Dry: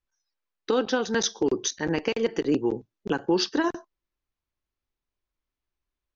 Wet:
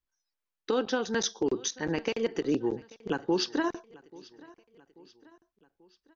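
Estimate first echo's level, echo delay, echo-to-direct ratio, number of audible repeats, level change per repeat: -22.5 dB, 837 ms, -21.5 dB, 3, -6.0 dB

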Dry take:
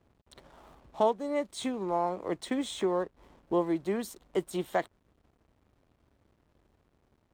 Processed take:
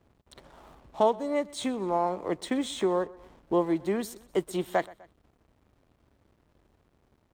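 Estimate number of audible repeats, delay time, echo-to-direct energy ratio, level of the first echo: 2, 125 ms, -21.0 dB, -22.0 dB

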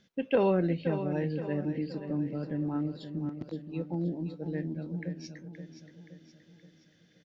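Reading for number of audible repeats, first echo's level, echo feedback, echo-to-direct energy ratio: 5, -10.0 dB, 49%, -9.0 dB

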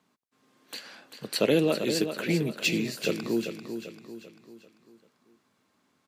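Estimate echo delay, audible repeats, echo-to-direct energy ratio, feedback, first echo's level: 392 ms, 4, -7.5 dB, 45%, -8.5 dB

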